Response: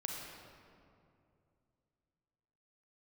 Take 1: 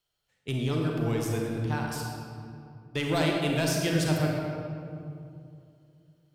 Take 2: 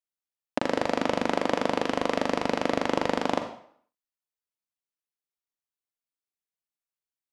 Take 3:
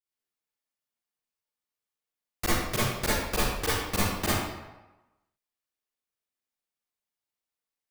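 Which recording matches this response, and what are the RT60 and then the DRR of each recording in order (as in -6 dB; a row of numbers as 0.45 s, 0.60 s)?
1; 2.5 s, 0.60 s, 1.1 s; -0.5 dB, 6.0 dB, -9.5 dB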